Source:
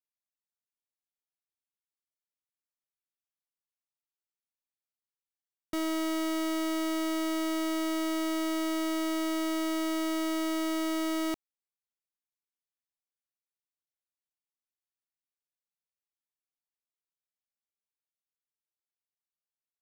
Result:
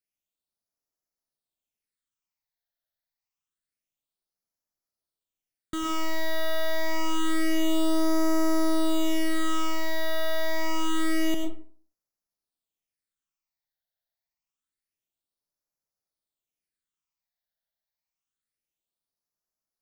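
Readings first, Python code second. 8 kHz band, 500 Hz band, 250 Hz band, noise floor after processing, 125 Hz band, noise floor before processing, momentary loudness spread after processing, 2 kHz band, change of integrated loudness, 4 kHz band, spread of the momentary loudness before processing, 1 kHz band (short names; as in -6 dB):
+2.5 dB, +4.0 dB, +1.5 dB, under -85 dBFS, n/a, under -85 dBFS, 5 LU, +5.5 dB, +2.5 dB, +4.0 dB, 1 LU, +4.0 dB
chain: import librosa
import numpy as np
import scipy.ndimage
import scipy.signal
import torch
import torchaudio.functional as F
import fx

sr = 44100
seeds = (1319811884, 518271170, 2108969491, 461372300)

y = fx.phaser_stages(x, sr, stages=8, low_hz=330.0, high_hz=3100.0, hz=0.27, feedback_pct=25)
y = fx.rev_freeverb(y, sr, rt60_s=0.48, hf_ratio=0.55, predelay_ms=65, drr_db=3.0)
y = F.gain(torch.from_numpy(y), 4.5).numpy()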